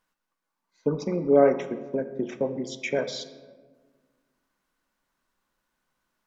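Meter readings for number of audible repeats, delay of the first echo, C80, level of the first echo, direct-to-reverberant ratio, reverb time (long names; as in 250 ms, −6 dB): no echo audible, no echo audible, 13.5 dB, no echo audible, 9.5 dB, 1.5 s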